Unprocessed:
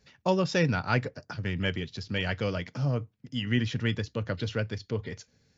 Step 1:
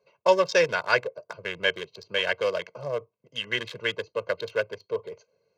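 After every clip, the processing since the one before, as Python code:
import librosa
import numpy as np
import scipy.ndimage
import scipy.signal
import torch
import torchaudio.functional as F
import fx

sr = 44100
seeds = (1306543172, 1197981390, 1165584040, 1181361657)

y = fx.wiener(x, sr, points=25)
y = scipy.signal.sosfilt(scipy.signal.butter(2, 520.0, 'highpass', fs=sr, output='sos'), y)
y = y + 0.98 * np.pad(y, (int(1.9 * sr / 1000.0), 0))[:len(y)]
y = y * 10.0 ** (5.5 / 20.0)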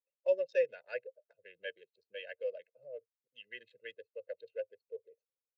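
y = fx.bin_expand(x, sr, power=1.5)
y = fx.vowel_filter(y, sr, vowel='e')
y = y * 10.0 ** (-5.0 / 20.0)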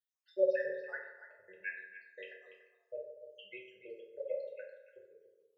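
y = fx.spec_dropout(x, sr, seeds[0], share_pct=77)
y = y + 10.0 ** (-12.0 / 20.0) * np.pad(y, (int(289 * sr / 1000.0), 0))[:len(y)]
y = fx.rev_fdn(y, sr, rt60_s=1.0, lf_ratio=0.8, hf_ratio=0.5, size_ms=16.0, drr_db=-3.5)
y = y * 10.0 ** (1.0 / 20.0)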